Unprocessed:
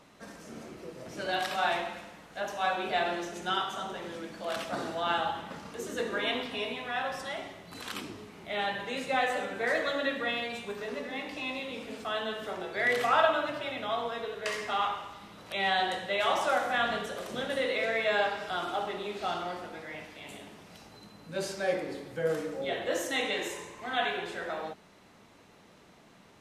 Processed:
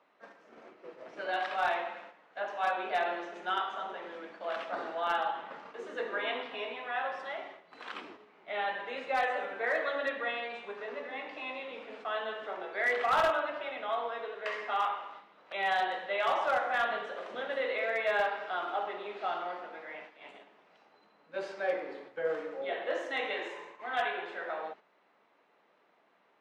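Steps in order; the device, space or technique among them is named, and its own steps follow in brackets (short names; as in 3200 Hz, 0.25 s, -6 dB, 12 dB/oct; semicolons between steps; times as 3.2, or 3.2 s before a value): walkie-talkie (BPF 470–2300 Hz; hard clip -22 dBFS, distortion -20 dB; gate -49 dBFS, range -7 dB)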